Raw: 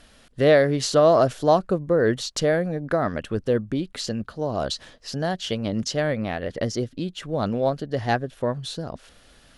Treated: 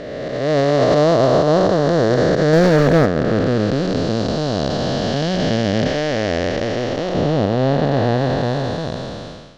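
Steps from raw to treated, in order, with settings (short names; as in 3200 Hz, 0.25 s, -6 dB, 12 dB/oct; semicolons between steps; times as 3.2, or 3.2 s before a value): time blur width 1.11 s; LPF 6400 Hz 24 dB/oct; 2.53–3.06 sample leveller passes 2; 5.87–7.15 bell 160 Hz -9.5 dB 1.6 oct; limiter -20 dBFS, peak gain reduction 7.5 dB; AGC gain up to 12 dB; gain +2.5 dB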